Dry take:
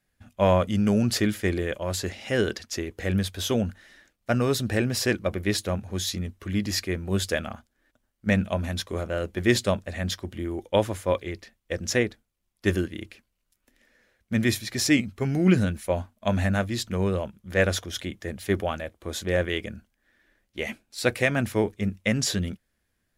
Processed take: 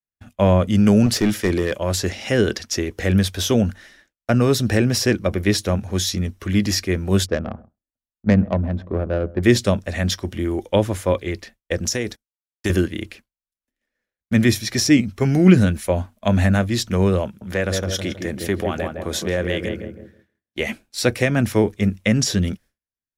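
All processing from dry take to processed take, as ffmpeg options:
ffmpeg -i in.wav -filter_complex "[0:a]asettb=1/sr,asplit=3[link_01][link_02][link_03];[link_01]atrim=end=1.064[link_04];[link_02]atrim=start=1.06:end=1.79,asetpts=PTS-STARTPTS,afade=type=in:duration=0.004:curve=qsin,afade=type=out:start_time=0.726:duration=0.004:curve=qsin,highpass=85,aeval=exprs='clip(val(0),-1,0.0841)':channel_layout=same[link_05];[link_03]atrim=start=1.786[link_06];[link_04][link_05]acrossfade=duration=0.004:curve1=hsin:curve2=qsin[link_07];[link_07][link_06]acrossfade=duration=0.004:curve1=qsin:curve2=hsin,asettb=1/sr,asplit=3[link_08][link_09][link_10];[link_08]atrim=end=7.264[link_11];[link_09]atrim=start=7.26:end=9.43,asetpts=PTS-STARTPTS,afade=type=in:duration=0.004:curve=qsin,afade=type=out:start_time=2.166:duration=0.004:curve=qsin,asplit=2[link_12][link_13];[link_13]adelay=131,lowpass=frequency=1700:poles=1,volume=-18.5dB,asplit=2[link_14][link_15];[link_15]adelay=131,lowpass=frequency=1700:poles=1,volume=0.21[link_16];[link_12][link_14][link_16]amix=inputs=3:normalize=0,atrim=end_sample=95697,adynamicsmooth=sensitivity=0.5:basefreq=620[link_17];[link_10]atrim=start=9.426[link_18];[link_11][link_17]acrossfade=duration=0.004:curve1=hsin:curve2=qsin[link_19];[link_19][link_18]acrossfade=duration=0.004:curve1=qsin:curve2=hsin,asettb=1/sr,asplit=3[link_20][link_21][link_22];[link_20]atrim=end=11.854[link_23];[link_21]atrim=start=11.85:end=12.7,asetpts=PTS-STARTPTS,afade=type=in:duration=0.004:curve=qsin,afade=type=out:start_time=0.846:duration=0.004:curve=qsin,agate=range=-26dB:threshold=-50dB:ratio=16:release=100:detection=peak,bass=frequency=250:gain=-1,treble=frequency=4000:gain=9,acompressor=threshold=-25dB:ratio=6:attack=3.2:release=140:knee=1:detection=peak[link_24];[link_22]atrim=start=12.696[link_25];[link_23][link_24]acrossfade=duration=0.004:curve1=hsin:curve2=qsin[link_26];[link_26][link_25]acrossfade=duration=0.004:curve1=qsin:curve2=hsin,asettb=1/sr,asplit=3[link_27][link_28][link_29];[link_27]atrim=end=17.254[link_30];[link_28]atrim=start=17.25:end=20.6,asetpts=PTS-STARTPTS,afade=type=in:duration=0.004:curve=qsin,afade=type=out:start_time=3.346:duration=0.004:curve=qsin,highpass=81,asplit=2[link_31][link_32];[link_32]adelay=160,lowpass=frequency=980:poles=1,volume=-5dB,asplit=2[link_33][link_34];[link_34]adelay=160,lowpass=frequency=980:poles=1,volume=0.41,asplit=2[link_35][link_36];[link_36]adelay=160,lowpass=frequency=980:poles=1,volume=0.41,asplit=2[link_37][link_38];[link_38]adelay=160,lowpass=frequency=980:poles=1,volume=0.41,asplit=2[link_39][link_40];[link_40]adelay=160,lowpass=frequency=980:poles=1,volume=0.41[link_41];[link_31][link_33][link_35][link_37][link_39][link_41]amix=inputs=6:normalize=0,atrim=end_sample=147735,acompressor=threshold=-27dB:ratio=2:attack=3.2:release=140:knee=1:detection=peak[link_42];[link_29]atrim=start=20.596[link_43];[link_30][link_42]acrossfade=duration=0.004:curve1=hsin:curve2=qsin[link_44];[link_44][link_43]acrossfade=duration=0.004:curve1=qsin:curve2=hsin,agate=range=-33dB:threshold=-47dB:ratio=3:detection=peak,adynamicequalizer=threshold=0.00282:dfrequency=5600:dqfactor=7.3:tfrequency=5600:tqfactor=7.3:attack=5:release=100:ratio=0.375:range=4:mode=boostabove:tftype=bell,acrossover=split=420[link_45][link_46];[link_46]acompressor=threshold=-30dB:ratio=2.5[link_47];[link_45][link_47]amix=inputs=2:normalize=0,volume=8dB" out.wav

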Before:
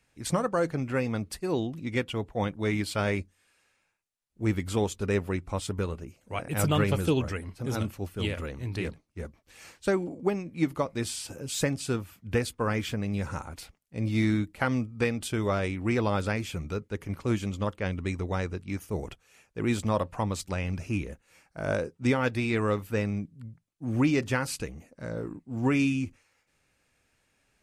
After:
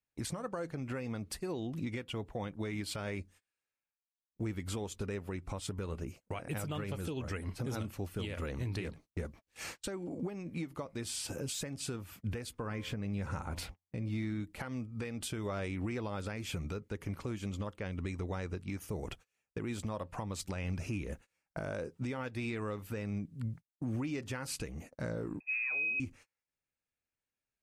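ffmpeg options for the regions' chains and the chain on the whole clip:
ffmpeg -i in.wav -filter_complex "[0:a]asettb=1/sr,asplit=3[link_01][link_02][link_03];[link_01]atrim=end=12.594[link_04];[link_02]atrim=start=12.59:end=14.4,asetpts=PTS-STARTPTS,afade=type=in:duration=0.004:curve=qsin,afade=type=out:start_time=1.806:duration=0.004:curve=qsin,bass=frequency=250:gain=2,treble=frequency=4000:gain=-5,bandreject=frequency=88.07:width_type=h:width=4,bandreject=frequency=176.14:width_type=h:width=4,bandreject=frequency=264.21:width_type=h:width=4,bandreject=frequency=352.28:width_type=h:width=4,bandreject=frequency=440.35:width_type=h:width=4,bandreject=frequency=528.42:width_type=h:width=4,bandreject=frequency=616.49:width_type=h:width=4,bandreject=frequency=704.56:width_type=h:width=4,bandreject=frequency=792.63:width_type=h:width=4,bandreject=frequency=880.7:width_type=h:width=4,bandreject=frequency=968.77:width_type=h:width=4,bandreject=frequency=1056.84:width_type=h:width=4[link_05];[link_03]atrim=start=14.396[link_06];[link_04][link_05]acrossfade=duration=0.004:curve1=hsin:curve2=qsin[link_07];[link_07][link_06]acrossfade=duration=0.004:curve1=qsin:curve2=hsin,asettb=1/sr,asplit=3[link_08][link_09][link_10];[link_08]atrim=end=25.404[link_11];[link_09]atrim=start=25.4:end=26,asetpts=PTS-STARTPTS,afade=type=in:duration=0.004:curve=qsin,afade=type=out:start_time=0.596:duration=0.004:curve=qsin,highpass=frequency=320:width_type=q:width=3,lowpass=frequency=2400:width_type=q:width=0.5098,lowpass=frequency=2400:width_type=q:width=0.6013,lowpass=frequency=2400:width_type=q:width=0.9,lowpass=frequency=2400:width_type=q:width=2.563,afreqshift=-2800[link_12];[link_10]atrim=start=25.996[link_13];[link_11][link_12]acrossfade=duration=0.004:curve1=hsin:curve2=qsin[link_14];[link_14][link_13]acrossfade=duration=0.004:curve1=qsin:curve2=hsin,agate=range=-31dB:threshold=-51dB:ratio=16:detection=peak,acompressor=threshold=-36dB:ratio=6,alimiter=level_in=11dB:limit=-24dB:level=0:latency=1:release=362,volume=-11dB,volume=6.5dB" out.wav

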